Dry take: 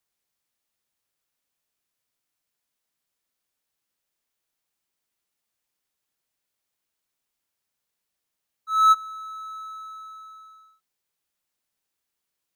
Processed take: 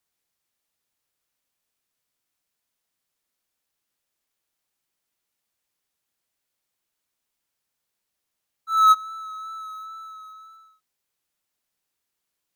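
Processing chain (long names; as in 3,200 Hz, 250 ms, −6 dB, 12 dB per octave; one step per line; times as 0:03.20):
in parallel at −8 dB: floating-point word with a short mantissa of 2 bits
on the sum: tape wow and flutter 22 cents
level −1.5 dB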